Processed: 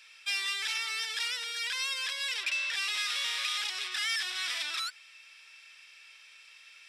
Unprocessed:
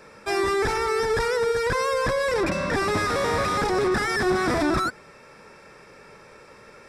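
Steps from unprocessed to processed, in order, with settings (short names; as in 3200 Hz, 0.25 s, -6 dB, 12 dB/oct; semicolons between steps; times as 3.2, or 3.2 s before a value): resonant high-pass 3000 Hz, resonance Q 4.5; gain -3 dB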